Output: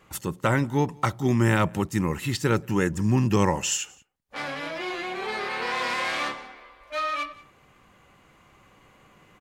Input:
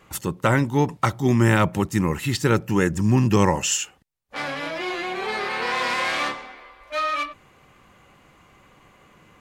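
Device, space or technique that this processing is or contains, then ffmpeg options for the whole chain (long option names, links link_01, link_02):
ducked delay: -filter_complex "[0:a]asplit=3[link_01][link_02][link_03];[link_02]adelay=180,volume=-4.5dB[link_04];[link_03]apad=whole_len=422553[link_05];[link_04][link_05]sidechaincompress=threshold=-38dB:ratio=16:attack=16:release=1220[link_06];[link_01][link_06]amix=inputs=2:normalize=0,volume=-3.5dB"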